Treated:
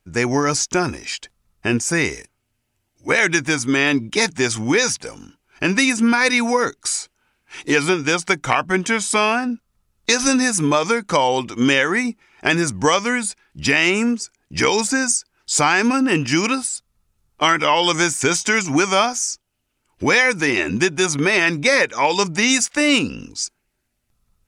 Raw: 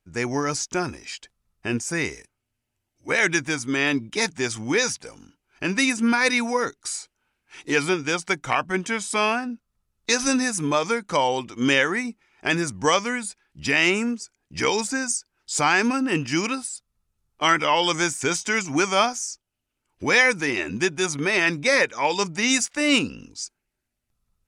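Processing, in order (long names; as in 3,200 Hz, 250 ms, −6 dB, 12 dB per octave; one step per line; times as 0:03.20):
downward compressor 2.5 to 1, threshold −22 dBFS, peak gain reduction 7 dB
level +8 dB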